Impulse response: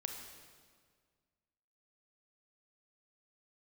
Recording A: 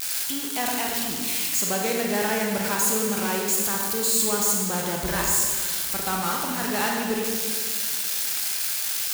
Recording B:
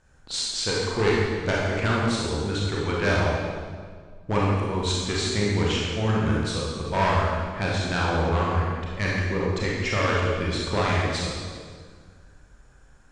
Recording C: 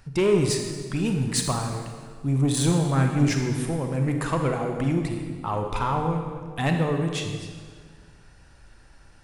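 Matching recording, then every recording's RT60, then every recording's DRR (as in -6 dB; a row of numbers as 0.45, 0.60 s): C; 1.8, 1.8, 1.8 s; -1.0, -5.0, 3.0 dB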